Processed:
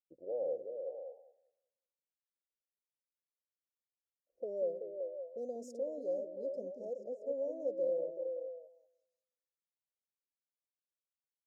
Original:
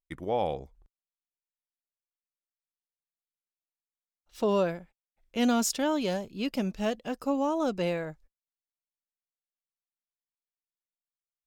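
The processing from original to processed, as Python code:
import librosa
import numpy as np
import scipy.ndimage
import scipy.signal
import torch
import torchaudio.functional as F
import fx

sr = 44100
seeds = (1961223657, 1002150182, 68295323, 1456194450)

p1 = fx.env_lowpass(x, sr, base_hz=950.0, full_db=-26.5)
p2 = scipy.signal.sosfilt(scipy.signal.cheby2(4, 60, [1400.0, 3000.0], 'bandstop', fs=sr, output='sos'), p1)
p3 = fx.low_shelf(p2, sr, hz=300.0, db=-8.0)
p4 = fx.over_compress(p3, sr, threshold_db=-35.0, ratio=-1.0)
p5 = p3 + F.gain(torch.from_numpy(p4), -3.0).numpy()
p6 = fx.vowel_filter(p5, sr, vowel='e')
p7 = p6 + fx.echo_stepped(p6, sr, ms=189, hz=270.0, octaves=0.7, feedback_pct=70, wet_db=-2, dry=0)
y = F.gain(torch.from_numpy(p7), -2.5).numpy()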